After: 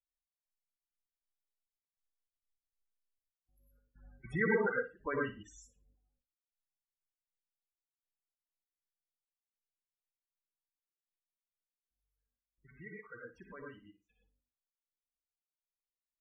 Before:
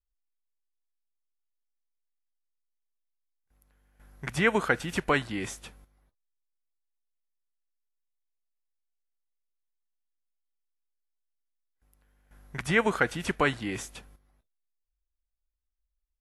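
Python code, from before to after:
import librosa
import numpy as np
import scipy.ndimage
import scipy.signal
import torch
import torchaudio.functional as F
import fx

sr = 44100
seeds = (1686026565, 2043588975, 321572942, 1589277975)

p1 = fx.doppler_pass(x, sr, speed_mps=6, closest_m=5.6, pass_at_s=3.27)
p2 = fx.quant_companded(p1, sr, bits=4)
p3 = p1 + (p2 * 10.0 ** (-6.5 / 20.0))
p4 = fx.step_gate(p3, sr, bpm=99, pattern='x..xx.x.xx', floor_db=-24.0, edge_ms=4.5)
p5 = fx.rev_gated(p4, sr, seeds[0], gate_ms=140, shape='rising', drr_db=-1.5)
p6 = fx.spec_topn(p5, sr, count=16)
p7 = fx.room_flutter(p6, sr, wall_m=9.8, rt60_s=0.26)
y = p7 * 10.0 ** (-7.5 / 20.0)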